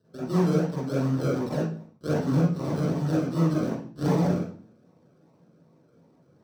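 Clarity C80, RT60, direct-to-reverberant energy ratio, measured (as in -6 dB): 6.5 dB, 0.45 s, -11.0 dB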